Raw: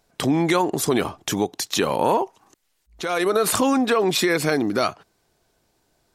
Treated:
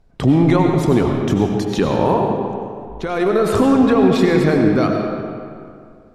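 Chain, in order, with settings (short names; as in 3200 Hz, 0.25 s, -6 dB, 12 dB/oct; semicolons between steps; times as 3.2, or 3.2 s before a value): RIAA curve playback; digital reverb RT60 2.3 s, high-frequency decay 0.65×, pre-delay 55 ms, DRR 2 dB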